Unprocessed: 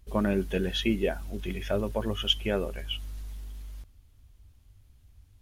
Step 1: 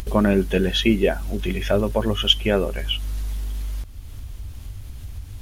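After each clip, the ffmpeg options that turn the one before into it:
ffmpeg -i in.wav -af "acompressor=mode=upward:threshold=-29dB:ratio=2.5,volume=8.5dB" out.wav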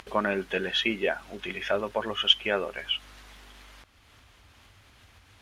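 ffmpeg -i in.wav -af "bandpass=frequency=1600:width_type=q:width=0.75:csg=0" out.wav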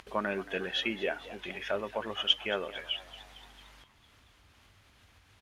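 ffmpeg -i in.wav -filter_complex "[0:a]asplit=7[link_01][link_02][link_03][link_04][link_05][link_06][link_07];[link_02]adelay=226,afreqshift=82,volume=-16.5dB[link_08];[link_03]adelay=452,afreqshift=164,volume=-20.9dB[link_09];[link_04]adelay=678,afreqshift=246,volume=-25.4dB[link_10];[link_05]adelay=904,afreqshift=328,volume=-29.8dB[link_11];[link_06]adelay=1130,afreqshift=410,volume=-34.2dB[link_12];[link_07]adelay=1356,afreqshift=492,volume=-38.7dB[link_13];[link_01][link_08][link_09][link_10][link_11][link_12][link_13]amix=inputs=7:normalize=0,volume=-5.5dB" out.wav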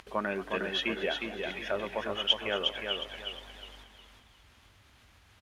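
ffmpeg -i in.wav -af "aecho=1:1:360|720|1080|1440:0.562|0.18|0.0576|0.0184" out.wav

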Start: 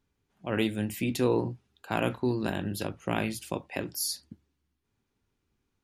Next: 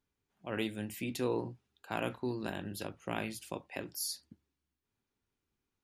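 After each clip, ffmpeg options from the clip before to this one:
ffmpeg -i in.wav -af "lowshelf=frequency=280:gain=-4.5,volume=-6dB" out.wav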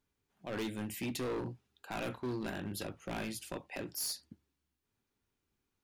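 ffmpeg -i in.wav -af "asoftclip=type=hard:threshold=-35dB,volume=2dB" out.wav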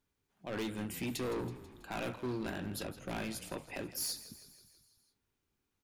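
ffmpeg -i in.wav -filter_complex "[0:a]asplit=7[link_01][link_02][link_03][link_04][link_05][link_06][link_07];[link_02]adelay=163,afreqshift=-37,volume=-15dB[link_08];[link_03]adelay=326,afreqshift=-74,volume=-19.4dB[link_09];[link_04]adelay=489,afreqshift=-111,volume=-23.9dB[link_10];[link_05]adelay=652,afreqshift=-148,volume=-28.3dB[link_11];[link_06]adelay=815,afreqshift=-185,volume=-32.7dB[link_12];[link_07]adelay=978,afreqshift=-222,volume=-37.2dB[link_13];[link_01][link_08][link_09][link_10][link_11][link_12][link_13]amix=inputs=7:normalize=0" out.wav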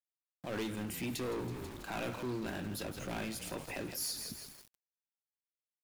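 ffmpeg -i in.wav -af "alimiter=level_in=17.5dB:limit=-24dB:level=0:latency=1:release=69,volume=-17.5dB,aeval=exprs='val(0)*gte(abs(val(0)),0.0015)':channel_layout=same,volume=9dB" out.wav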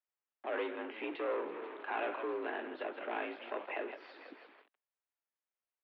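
ffmpeg -i in.wav -filter_complex "[0:a]highpass=frequency=210:width_type=q:width=0.5412,highpass=frequency=210:width_type=q:width=1.307,lowpass=frequency=3500:width_type=q:width=0.5176,lowpass=frequency=3500:width_type=q:width=0.7071,lowpass=frequency=3500:width_type=q:width=1.932,afreqshift=56,acrossover=split=360 2800:gain=0.178 1 0.0708[link_01][link_02][link_03];[link_01][link_02][link_03]amix=inputs=3:normalize=0,volume=4.5dB" out.wav

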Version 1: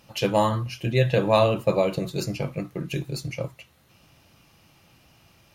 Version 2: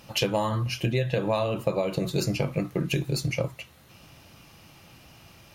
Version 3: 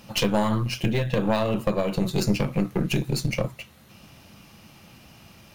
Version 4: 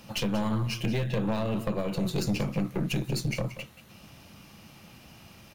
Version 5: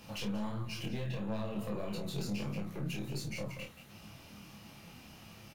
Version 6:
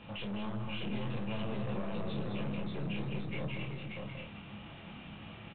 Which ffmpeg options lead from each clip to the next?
ffmpeg -i in.wav -af "acompressor=threshold=-27dB:ratio=16,volume=5.5dB" out.wav
ffmpeg -i in.wav -filter_complex "[0:a]equalizer=frequency=210:width=4.6:gain=8.5,aeval=exprs='(tanh(7.94*val(0)+0.75)-tanh(0.75))/7.94':channel_layout=same,acrossover=split=1600[link_01][link_02];[link_02]acrusher=bits=4:mode=log:mix=0:aa=0.000001[link_03];[link_01][link_03]amix=inputs=2:normalize=0,volume=5.5dB" out.wav
ffmpeg -i in.wav -filter_complex "[0:a]acrossover=split=330[link_01][link_02];[link_02]acompressor=threshold=-28dB:ratio=3[link_03];[link_01][link_03]amix=inputs=2:normalize=0,asoftclip=type=tanh:threshold=-19.5dB,aecho=1:1:182:0.211,volume=-1.5dB" out.wav
ffmpeg -i in.wav -filter_complex "[0:a]alimiter=level_in=6.5dB:limit=-24dB:level=0:latency=1:release=11,volume=-6.5dB,flanger=delay=18:depth=7.1:speed=1.5,asplit=2[link_01][link_02];[link_02]adelay=29,volume=-6dB[link_03];[link_01][link_03]amix=inputs=2:normalize=0" out.wav
ffmpeg -i in.wav -af "aresample=8000,asoftclip=type=tanh:threshold=-38.5dB,aresample=44100,aecho=1:1:206|584:0.473|0.708,volume=3dB" out.wav

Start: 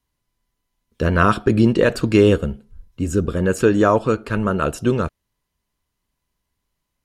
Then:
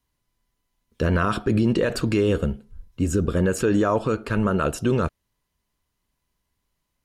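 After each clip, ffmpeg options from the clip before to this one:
ffmpeg -i in.wav -af "alimiter=limit=-12dB:level=0:latency=1:release=36" out.wav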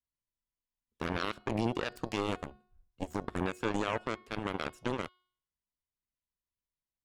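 ffmpeg -i in.wav -af "aeval=exprs='0.266*(cos(1*acos(clip(val(0)/0.266,-1,1)))-cos(1*PI/2))+0.106*(cos(3*acos(clip(val(0)/0.266,-1,1)))-cos(3*PI/2))':channel_layout=same,bandreject=frequency=363.6:width_type=h:width=4,bandreject=frequency=727.2:width_type=h:width=4,bandreject=frequency=1090.8:width_type=h:width=4,bandreject=frequency=1454.4:width_type=h:width=4,bandreject=frequency=1818:width_type=h:width=4,bandreject=frequency=2181.6:width_type=h:width=4,bandreject=frequency=2545.2:width_type=h:width=4,bandreject=frequency=2908.8:width_type=h:width=4,bandreject=frequency=3272.4:width_type=h:width=4,bandreject=frequency=3636:width_type=h:width=4,bandreject=frequency=3999.6:width_type=h:width=4,bandreject=frequency=4363.2:width_type=h:width=4,bandreject=frequency=4726.8:width_type=h:width=4,bandreject=frequency=5090.4:width_type=h:width=4,volume=-8.5dB" out.wav

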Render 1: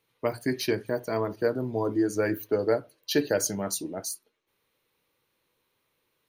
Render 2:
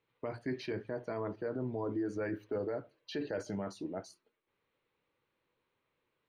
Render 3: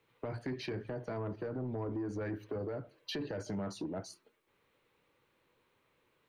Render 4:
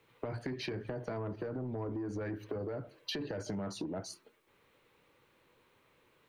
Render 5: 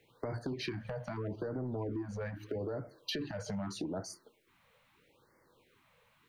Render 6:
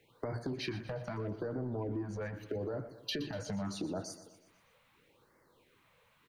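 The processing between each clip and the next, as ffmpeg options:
ffmpeg -i in.wav -af "alimiter=limit=-23.5dB:level=0:latency=1:release=26,lowpass=2700,volume=-4.5dB" out.wav
ffmpeg -i in.wav -filter_complex "[0:a]acrossover=split=180[link_01][link_02];[link_01]alimiter=level_in=19.5dB:limit=-24dB:level=0:latency=1,volume=-19.5dB[link_03];[link_02]acompressor=threshold=-44dB:ratio=6[link_04];[link_03][link_04]amix=inputs=2:normalize=0,asoftclip=type=tanh:threshold=-38.5dB,volume=8dB" out.wav
ffmpeg -i in.wav -af "acompressor=threshold=-41dB:ratio=6,volume=5.5dB" out.wav
ffmpeg -i in.wav -af "asoftclip=type=hard:threshold=-30dB,afftfilt=real='re*(1-between(b*sr/1024,300*pow(3200/300,0.5+0.5*sin(2*PI*0.79*pts/sr))/1.41,300*pow(3200/300,0.5+0.5*sin(2*PI*0.79*pts/sr))*1.41))':imag='im*(1-between(b*sr/1024,300*pow(3200/300,0.5+0.5*sin(2*PI*0.79*pts/sr))/1.41,300*pow(3200/300,0.5+0.5*sin(2*PI*0.79*pts/sr))*1.41))':win_size=1024:overlap=0.75,volume=1dB" out.wav
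ffmpeg -i in.wav -af "aecho=1:1:121|242|363|484|605:0.2|0.0998|0.0499|0.0249|0.0125" out.wav

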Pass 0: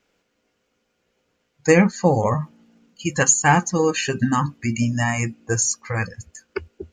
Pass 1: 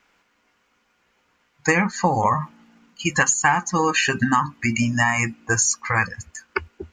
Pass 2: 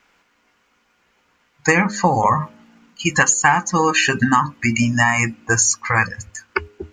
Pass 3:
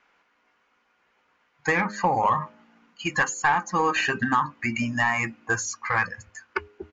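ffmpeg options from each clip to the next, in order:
ffmpeg -i in.wav -af "equalizer=frequency=125:width_type=o:width=1:gain=-4,equalizer=frequency=500:width_type=o:width=1:gain=-7,equalizer=frequency=1000:width_type=o:width=1:gain=9,equalizer=frequency=2000:width_type=o:width=1:gain=5,acompressor=threshold=-18dB:ratio=6,volume=3dB" out.wav
ffmpeg -i in.wav -af "bandreject=frequency=103.6:width_type=h:width=4,bandreject=frequency=207.2:width_type=h:width=4,bandreject=frequency=310.8:width_type=h:width=4,bandreject=frequency=414.4:width_type=h:width=4,bandreject=frequency=518:width_type=h:width=4,bandreject=frequency=621.6:width_type=h:width=4,volume=3.5dB" out.wav
ffmpeg -i in.wav -filter_complex "[0:a]asplit=2[link_01][link_02];[link_02]highpass=frequency=720:poles=1,volume=12dB,asoftclip=type=tanh:threshold=-1dB[link_03];[link_01][link_03]amix=inputs=2:normalize=0,lowpass=frequency=1500:poles=1,volume=-6dB,aresample=16000,aresample=44100,volume=-8dB" out.wav

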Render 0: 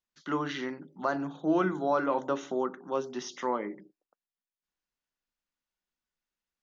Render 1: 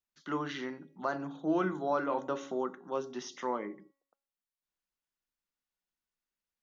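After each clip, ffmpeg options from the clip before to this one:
ffmpeg -i in.wav -af "bandreject=frequency=275.9:width_type=h:width=4,bandreject=frequency=551.8:width_type=h:width=4,bandreject=frequency=827.7:width_type=h:width=4,bandreject=frequency=1103.6:width_type=h:width=4,bandreject=frequency=1379.5:width_type=h:width=4,bandreject=frequency=1655.4:width_type=h:width=4,bandreject=frequency=1931.3:width_type=h:width=4,bandreject=frequency=2207.2:width_type=h:width=4,bandreject=frequency=2483.1:width_type=h:width=4,bandreject=frequency=2759:width_type=h:width=4,bandreject=frequency=3034.9:width_type=h:width=4,bandreject=frequency=3310.8:width_type=h:width=4,bandreject=frequency=3586.7:width_type=h:width=4,bandreject=frequency=3862.6:width_type=h:width=4,bandreject=frequency=4138.5:width_type=h:width=4,bandreject=frequency=4414.4:width_type=h:width=4,bandreject=frequency=4690.3:width_type=h:width=4,bandreject=frequency=4966.2:width_type=h:width=4,bandreject=frequency=5242.1:width_type=h:width=4,bandreject=frequency=5518:width_type=h:width=4,bandreject=frequency=5793.9:width_type=h:width=4,bandreject=frequency=6069.8:width_type=h:width=4,bandreject=frequency=6345.7:width_type=h:width=4,bandreject=frequency=6621.6:width_type=h:width=4,bandreject=frequency=6897.5:width_type=h:width=4,bandreject=frequency=7173.4:width_type=h:width=4,bandreject=frequency=7449.3:width_type=h:width=4,bandreject=frequency=7725.2:width_type=h:width=4,bandreject=frequency=8001.1:width_type=h:width=4,bandreject=frequency=8277:width_type=h:width=4,bandreject=frequency=8552.9:width_type=h:width=4,bandreject=frequency=8828.8:width_type=h:width=4,bandreject=frequency=9104.7:width_type=h:width=4,bandreject=frequency=9380.6:width_type=h:width=4,bandreject=frequency=9656.5:width_type=h:width=4,volume=-3.5dB" out.wav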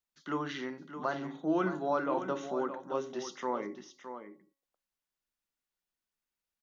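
ffmpeg -i in.wav -af "aecho=1:1:616:0.316" out.wav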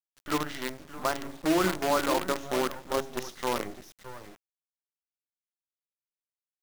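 ffmpeg -i in.wav -af "acrusher=bits=6:dc=4:mix=0:aa=0.000001,volume=4.5dB" out.wav

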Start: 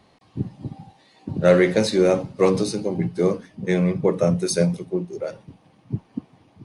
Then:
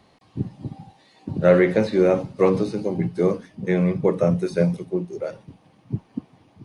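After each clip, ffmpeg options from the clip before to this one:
ffmpeg -i in.wav -filter_complex "[0:a]acrossover=split=2900[link_01][link_02];[link_02]acompressor=threshold=-49dB:ratio=4:attack=1:release=60[link_03];[link_01][link_03]amix=inputs=2:normalize=0" out.wav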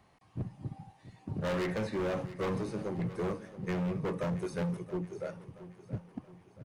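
ffmpeg -i in.wav -af "equalizer=frequency=250:width_type=o:width=1:gain=-6,equalizer=frequency=500:width_type=o:width=1:gain=-5,equalizer=frequency=4000:width_type=o:width=1:gain=-9,asoftclip=type=hard:threshold=-25.5dB,aecho=1:1:675|1350|2025|2700:0.168|0.0806|0.0387|0.0186,volume=-4.5dB" out.wav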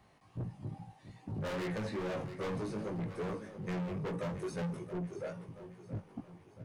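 ffmpeg -i in.wav -af "flanger=delay=17:depth=3:speed=2.4,asoftclip=type=tanh:threshold=-36.5dB,volume=3.5dB" out.wav

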